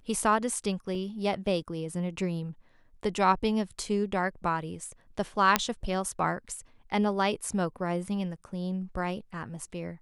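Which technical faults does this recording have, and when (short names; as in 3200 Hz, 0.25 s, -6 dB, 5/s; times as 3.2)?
0.95 gap 2.6 ms
5.56 pop -4 dBFS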